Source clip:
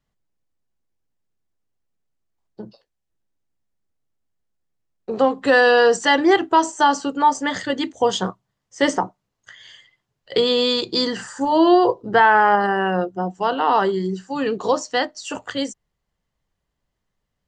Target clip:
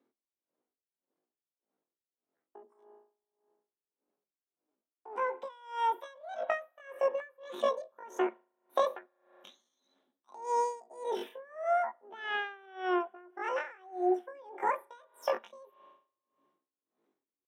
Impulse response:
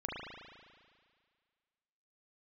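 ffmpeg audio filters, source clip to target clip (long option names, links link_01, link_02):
-filter_complex "[0:a]lowpass=frequency=2200:poles=1,acompressor=threshold=-30dB:ratio=6,highpass=frequency=140:width=0.5412,highpass=frequency=140:width=1.3066,tiltshelf=frequency=730:gain=9,asetrate=85689,aresample=44100,atempo=0.514651,asplit=2[link_01][link_02];[1:a]atrim=start_sample=2205[link_03];[link_02][link_03]afir=irnorm=-1:irlink=0,volume=-20.5dB[link_04];[link_01][link_04]amix=inputs=2:normalize=0,aeval=exprs='val(0)*pow(10,-26*(0.5-0.5*cos(2*PI*1.7*n/s))/20)':channel_layout=same"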